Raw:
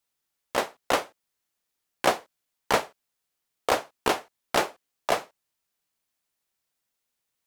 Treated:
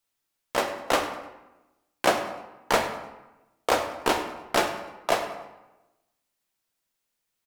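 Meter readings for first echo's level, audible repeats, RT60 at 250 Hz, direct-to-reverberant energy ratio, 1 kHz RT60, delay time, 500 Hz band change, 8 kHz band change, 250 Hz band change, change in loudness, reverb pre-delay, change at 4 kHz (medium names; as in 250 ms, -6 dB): -15.5 dB, 1, 1.2 s, 4.0 dB, 1.0 s, 100 ms, +1.5 dB, +1.0 dB, +2.5 dB, +1.0 dB, 3 ms, +1.0 dB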